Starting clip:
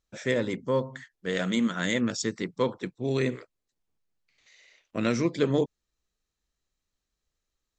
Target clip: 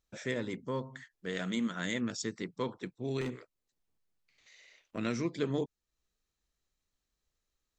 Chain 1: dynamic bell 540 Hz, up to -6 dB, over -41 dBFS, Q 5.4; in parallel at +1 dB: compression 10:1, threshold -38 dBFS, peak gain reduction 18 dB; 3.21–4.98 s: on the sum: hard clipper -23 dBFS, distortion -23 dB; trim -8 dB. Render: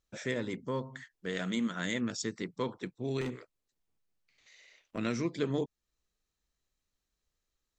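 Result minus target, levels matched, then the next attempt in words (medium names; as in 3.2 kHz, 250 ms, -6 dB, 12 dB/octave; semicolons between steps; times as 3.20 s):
compression: peak gain reduction -6 dB
dynamic bell 540 Hz, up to -6 dB, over -41 dBFS, Q 5.4; in parallel at +1 dB: compression 10:1, threshold -44.5 dBFS, peak gain reduction 24 dB; 3.21–4.98 s: on the sum: hard clipper -23 dBFS, distortion -24 dB; trim -8 dB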